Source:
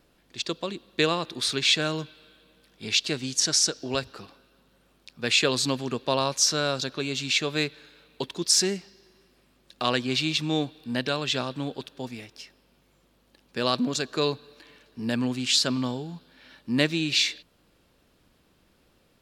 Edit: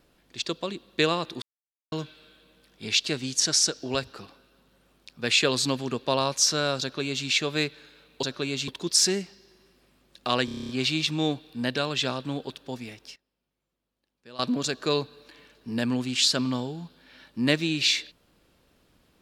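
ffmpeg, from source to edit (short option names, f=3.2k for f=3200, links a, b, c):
-filter_complex "[0:a]asplit=15[a][b][c][d][e][f][g][h][i][j][k][l][m][n][o];[a]atrim=end=1.42,asetpts=PTS-STARTPTS,afade=t=out:st=1.416:d=0.004:c=hsin[p];[b]atrim=start=1.42:end=1.92,asetpts=PTS-STARTPTS,volume=0[q];[c]atrim=start=1.92:end=8.232,asetpts=PTS-STARTPTS,afade=t=in:d=0.004:c=hsin[r];[d]atrim=start=6.808:end=7.262[s];[e]atrim=start=8.228:end=10.032[t];[f]atrim=start=9.998:end=10.032[u];[g]atrim=start=9.998:end=10.032[v];[h]atrim=start=9.998:end=10.032[w];[i]atrim=start=9.998:end=10.032[x];[j]atrim=start=9.998:end=10.032[y];[k]atrim=start=9.998:end=10.032[z];[l]atrim=start=9.998:end=10.032[aa];[m]atrim=start=9.998:end=12.47,asetpts=PTS-STARTPTS,afade=t=out:st=2.222:d=0.25:c=log:silence=0.105925[ab];[n]atrim=start=12.47:end=13.7,asetpts=PTS-STARTPTS,volume=-19.5dB[ac];[o]atrim=start=13.7,asetpts=PTS-STARTPTS,afade=t=in:d=0.25:c=log:silence=0.105925[ad];[p][q][r]concat=n=3:v=0:a=1[ae];[ae][s]acrossfade=d=0.004:c1=hsin:c2=hsin[af];[af][t]acrossfade=d=0.004:c1=hsin:c2=hsin[ag];[ag][u]acrossfade=d=0.004:c1=hsin:c2=hsin[ah];[ah][v]acrossfade=d=0.004:c1=hsin:c2=hsin[ai];[ai][w]acrossfade=d=0.004:c1=hsin:c2=hsin[aj];[aj][x]acrossfade=d=0.004:c1=hsin:c2=hsin[ak];[ak][y]acrossfade=d=0.004:c1=hsin:c2=hsin[al];[al][z]acrossfade=d=0.004:c1=hsin:c2=hsin[am];[am][aa]acrossfade=d=0.004:c1=hsin:c2=hsin[an];[ab][ac][ad]concat=n=3:v=0:a=1[ao];[an][ao]acrossfade=d=0.004:c1=hsin:c2=hsin"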